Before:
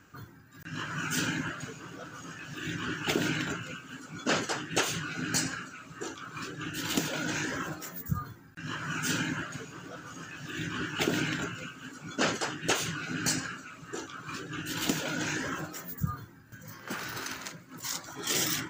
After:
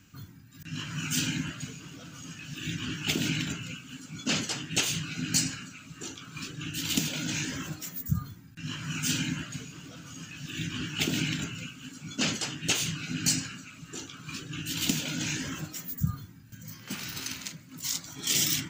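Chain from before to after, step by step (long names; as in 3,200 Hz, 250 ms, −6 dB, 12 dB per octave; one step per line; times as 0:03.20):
flat-topped bell 780 Hz −11.5 dB 2.7 octaves
hum removal 58.53 Hz, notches 34
level +4 dB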